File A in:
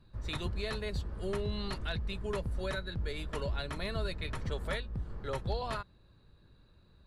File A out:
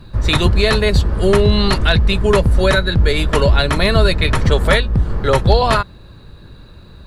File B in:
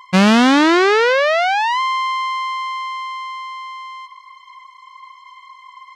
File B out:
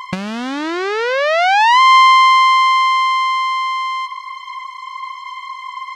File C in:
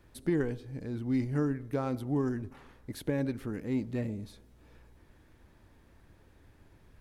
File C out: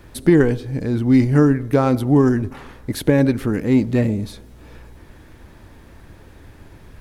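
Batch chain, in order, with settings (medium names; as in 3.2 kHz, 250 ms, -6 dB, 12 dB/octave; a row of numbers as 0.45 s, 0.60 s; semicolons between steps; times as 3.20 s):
compressor with a negative ratio -19 dBFS, ratio -0.5; peak normalisation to -1.5 dBFS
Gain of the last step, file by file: +22.5 dB, +7.5 dB, +16.0 dB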